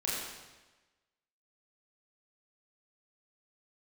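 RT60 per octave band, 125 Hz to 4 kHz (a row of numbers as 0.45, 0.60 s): 1.2, 1.2, 1.2, 1.2, 1.2, 1.1 s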